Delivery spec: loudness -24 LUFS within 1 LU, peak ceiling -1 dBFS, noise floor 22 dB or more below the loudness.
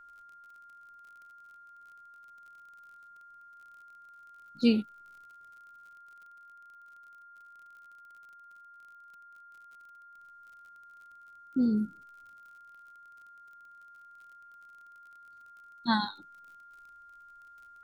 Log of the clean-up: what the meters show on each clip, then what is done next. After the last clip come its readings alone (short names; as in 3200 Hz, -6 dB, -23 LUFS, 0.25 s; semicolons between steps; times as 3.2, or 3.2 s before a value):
ticks 44/s; steady tone 1400 Hz; tone level -51 dBFS; loudness -30.0 LUFS; peak -12.0 dBFS; loudness target -24.0 LUFS
-> de-click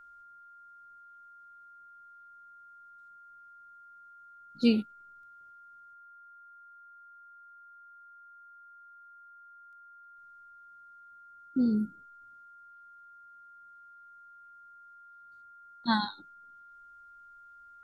ticks 0.11/s; steady tone 1400 Hz; tone level -51 dBFS
-> notch 1400 Hz, Q 30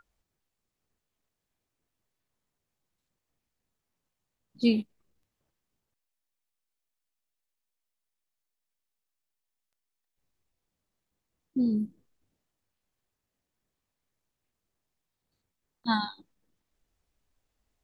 steady tone none; loudness -30.0 LUFS; peak -12.0 dBFS; loudness target -24.0 LUFS
-> gain +6 dB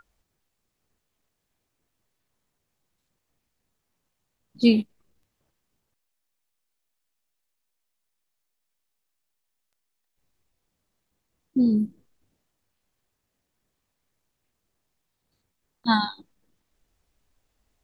loudness -24.0 LUFS; peak -6.0 dBFS; noise floor -79 dBFS